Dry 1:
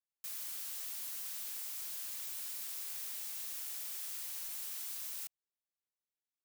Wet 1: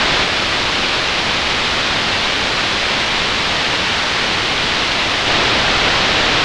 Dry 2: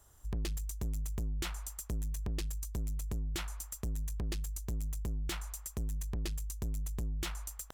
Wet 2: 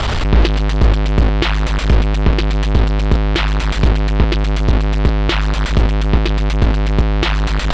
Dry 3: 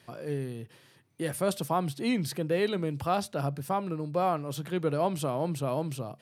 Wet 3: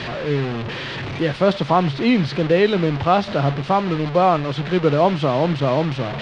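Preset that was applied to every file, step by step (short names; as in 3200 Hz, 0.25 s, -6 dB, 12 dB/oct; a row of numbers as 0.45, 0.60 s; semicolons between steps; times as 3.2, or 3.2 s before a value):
delta modulation 64 kbps, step -32.5 dBFS; LPF 4000 Hz 24 dB/oct; normalise peaks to -3 dBFS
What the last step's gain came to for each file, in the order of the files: +31.5, +24.5, +11.5 dB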